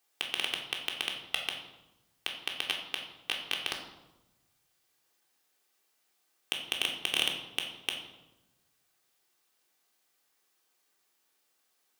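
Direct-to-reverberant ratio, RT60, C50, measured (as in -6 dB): -0.5 dB, 1.0 s, 6.0 dB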